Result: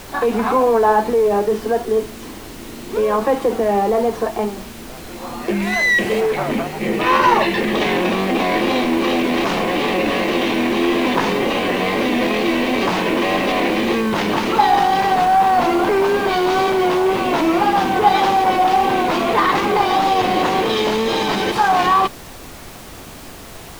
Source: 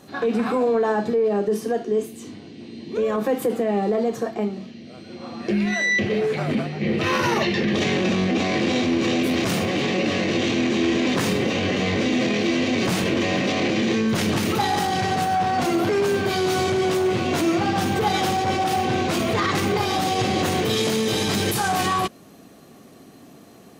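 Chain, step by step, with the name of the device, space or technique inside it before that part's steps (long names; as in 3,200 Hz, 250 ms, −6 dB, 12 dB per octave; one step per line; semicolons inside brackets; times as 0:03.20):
horn gramophone (band-pass filter 240–3,800 Hz; parametric band 940 Hz +9 dB 0.54 octaves; tape wow and flutter; pink noise bed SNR 19 dB)
0:05.62–0:06.21: parametric band 7,300 Hz +4.5 dB 2 octaves
level +4.5 dB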